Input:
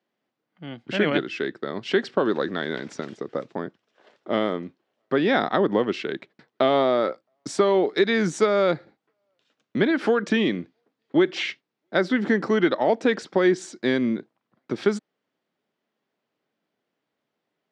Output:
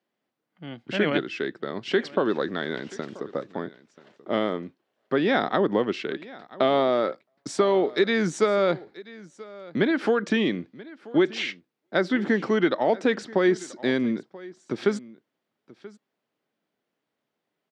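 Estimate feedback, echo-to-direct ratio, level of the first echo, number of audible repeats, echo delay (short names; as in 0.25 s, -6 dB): no steady repeat, -20.0 dB, -20.0 dB, 1, 0.983 s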